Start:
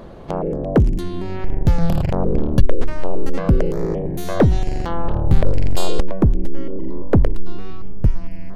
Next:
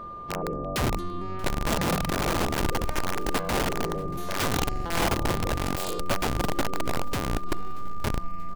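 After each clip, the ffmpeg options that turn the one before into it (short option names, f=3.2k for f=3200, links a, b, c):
-af "aeval=exprs='(mod(4.22*val(0)+1,2)-1)/4.22':c=same,aecho=1:1:633|1266|1899|2532:0.0794|0.0445|0.0249|0.0139,aeval=exprs='val(0)+0.0398*sin(2*PI*1200*n/s)':c=same,volume=-8.5dB"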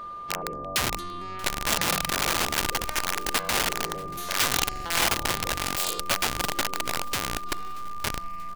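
-af "tiltshelf=f=970:g=-8"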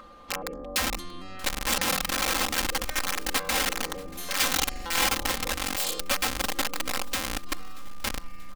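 -af "aecho=1:1:3.8:0.96,volume=-3.5dB"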